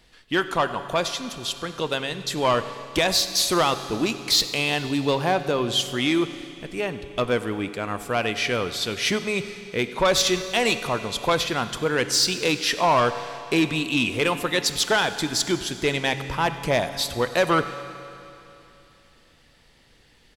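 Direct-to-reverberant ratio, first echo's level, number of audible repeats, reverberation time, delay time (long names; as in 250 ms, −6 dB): 10.0 dB, −20.5 dB, 1, 3.0 s, 96 ms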